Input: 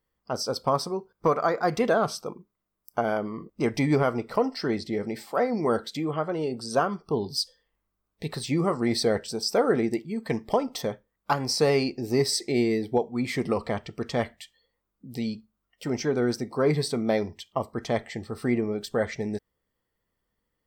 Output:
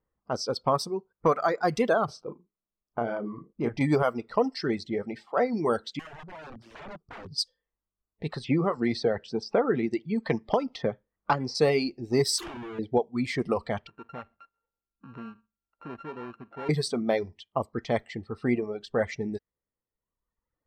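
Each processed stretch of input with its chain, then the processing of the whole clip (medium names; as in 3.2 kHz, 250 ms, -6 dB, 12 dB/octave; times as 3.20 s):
2.05–3.81 s: low-pass 1.7 kHz 6 dB/octave + compression 1.5:1, threshold -29 dBFS + doubling 34 ms -7 dB
5.99–7.32 s: FFT filter 100 Hz 0 dB, 2.4 kHz -21 dB, 5.5 kHz +1 dB + integer overflow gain 34.5 dB
8.44–11.55 s: distance through air 140 m + three bands compressed up and down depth 70%
12.38–12.79 s: compressor with a negative ratio -35 dBFS + Schmitt trigger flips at -45.5 dBFS
13.87–16.69 s: sorted samples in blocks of 32 samples + tone controls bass -3 dB, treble -12 dB + compression 2:1, threshold -43 dBFS
whole clip: reverb removal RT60 1.3 s; level-controlled noise filter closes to 1.4 kHz, open at -22 dBFS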